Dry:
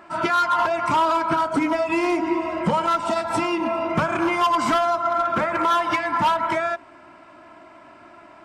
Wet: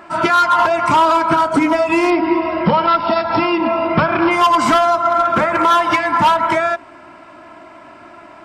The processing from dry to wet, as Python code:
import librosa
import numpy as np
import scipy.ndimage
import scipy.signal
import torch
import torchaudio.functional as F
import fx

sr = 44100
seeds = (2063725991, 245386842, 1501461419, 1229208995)

y = fx.brickwall_lowpass(x, sr, high_hz=5500.0, at=(2.1, 4.31))
y = y * 10.0 ** (7.0 / 20.0)